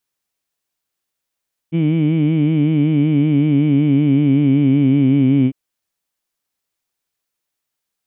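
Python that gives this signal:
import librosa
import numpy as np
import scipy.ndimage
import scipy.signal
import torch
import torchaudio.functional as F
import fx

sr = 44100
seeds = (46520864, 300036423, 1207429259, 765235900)

y = fx.vowel(sr, seeds[0], length_s=3.8, word='heed', hz=159.0, glide_st=-3.0, vibrato_hz=5.3, vibrato_st=0.9)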